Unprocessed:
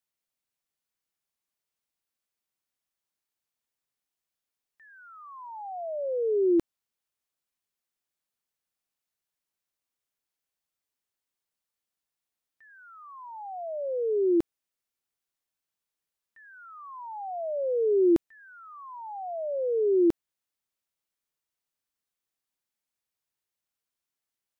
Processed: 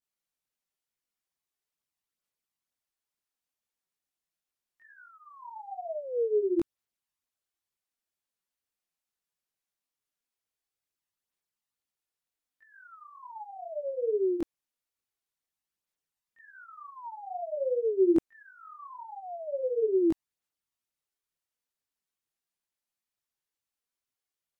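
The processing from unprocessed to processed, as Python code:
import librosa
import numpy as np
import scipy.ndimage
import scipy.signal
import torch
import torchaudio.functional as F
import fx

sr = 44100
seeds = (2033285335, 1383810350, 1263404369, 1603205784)

y = fx.wow_flutter(x, sr, seeds[0], rate_hz=2.1, depth_cents=29.0)
y = fx.chorus_voices(y, sr, voices=2, hz=1.1, base_ms=21, depth_ms=3.0, mix_pct=65)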